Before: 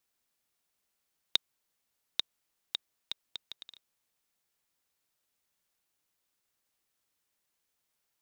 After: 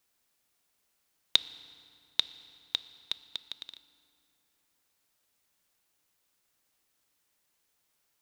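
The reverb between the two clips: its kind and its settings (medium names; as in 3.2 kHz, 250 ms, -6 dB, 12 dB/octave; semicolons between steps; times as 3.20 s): FDN reverb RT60 2.6 s, low-frequency decay 1.3×, high-frequency decay 0.7×, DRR 14.5 dB; trim +5 dB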